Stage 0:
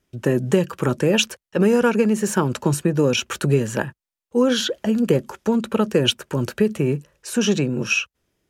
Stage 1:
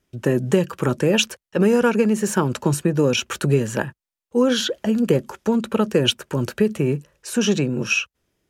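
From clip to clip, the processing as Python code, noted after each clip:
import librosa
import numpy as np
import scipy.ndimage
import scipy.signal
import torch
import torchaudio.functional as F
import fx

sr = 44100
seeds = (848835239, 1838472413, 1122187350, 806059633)

y = x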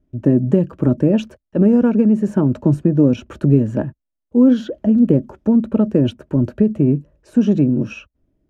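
y = fx.tilt_eq(x, sr, slope=-4.5)
y = fx.small_body(y, sr, hz=(280.0, 610.0), ring_ms=35, db=11)
y = y * librosa.db_to_amplitude(-8.5)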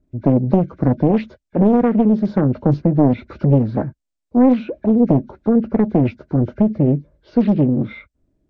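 y = fx.freq_compress(x, sr, knee_hz=1400.0, ratio=1.5)
y = fx.doppler_dist(y, sr, depth_ms=0.8)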